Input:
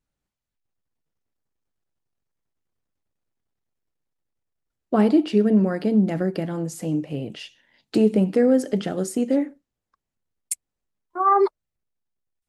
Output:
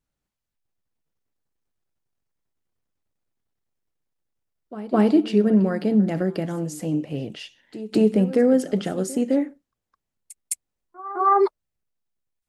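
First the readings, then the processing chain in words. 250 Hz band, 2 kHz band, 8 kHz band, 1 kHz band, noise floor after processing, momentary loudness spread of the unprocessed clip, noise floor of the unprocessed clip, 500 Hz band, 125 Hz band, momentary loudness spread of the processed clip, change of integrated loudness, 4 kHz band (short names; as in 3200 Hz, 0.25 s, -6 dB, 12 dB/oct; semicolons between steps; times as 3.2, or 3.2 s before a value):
0.0 dB, 0.0 dB, 0.0 dB, 0.0 dB, -84 dBFS, 13 LU, -85 dBFS, 0.0 dB, 0.0 dB, 17 LU, 0.0 dB, 0.0 dB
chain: reverse echo 0.211 s -16.5 dB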